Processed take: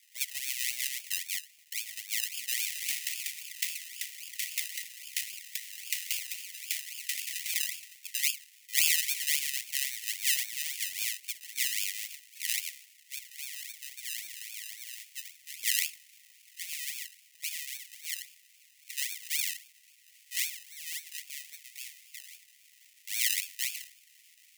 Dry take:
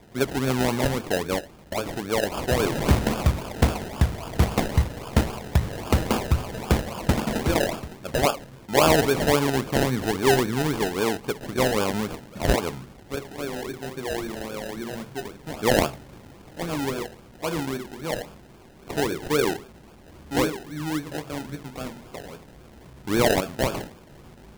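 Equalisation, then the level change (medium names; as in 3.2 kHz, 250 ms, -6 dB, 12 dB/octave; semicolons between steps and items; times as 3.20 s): rippled Chebyshev high-pass 1.9 kHz, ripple 3 dB; treble shelf 8 kHz +11 dB; -2.0 dB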